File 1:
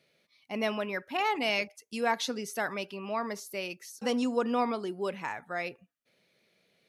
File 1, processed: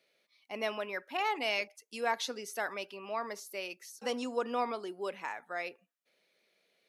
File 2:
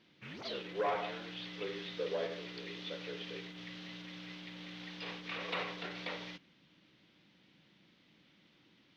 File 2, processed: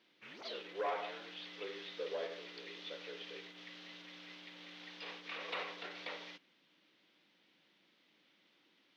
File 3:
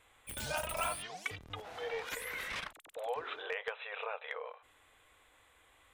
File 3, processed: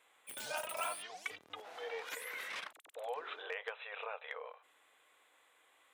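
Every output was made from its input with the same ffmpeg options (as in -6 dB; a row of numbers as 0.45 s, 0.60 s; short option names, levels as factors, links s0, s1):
-af "highpass=340,volume=0.708"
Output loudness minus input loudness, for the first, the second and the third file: -4.0 LU, -3.5 LU, -3.0 LU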